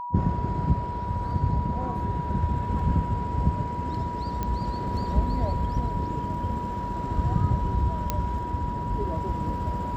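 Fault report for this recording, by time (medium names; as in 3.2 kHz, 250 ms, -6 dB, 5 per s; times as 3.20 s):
whine 970 Hz -31 dBFS
4.43 s: pop -16 dBFS
8.10 s: pop -10 dBFS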